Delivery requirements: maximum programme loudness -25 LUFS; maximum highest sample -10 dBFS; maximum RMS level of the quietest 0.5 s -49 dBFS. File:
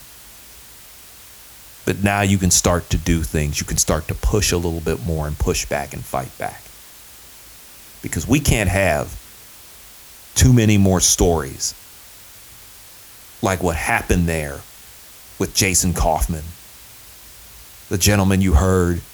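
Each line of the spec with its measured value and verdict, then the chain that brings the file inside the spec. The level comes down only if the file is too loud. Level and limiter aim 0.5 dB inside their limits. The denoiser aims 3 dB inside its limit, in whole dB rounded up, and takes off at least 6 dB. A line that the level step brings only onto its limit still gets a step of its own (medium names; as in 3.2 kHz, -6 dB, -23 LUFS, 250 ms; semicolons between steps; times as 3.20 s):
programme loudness -18.5 LUFS: fail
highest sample -3.0 dBFS: fail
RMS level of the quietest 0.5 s -42 dBFS: fail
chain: noise reduction 6 dB, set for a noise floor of -42 dBFS; trim -7 dB; peak limiter -10.5 dBFS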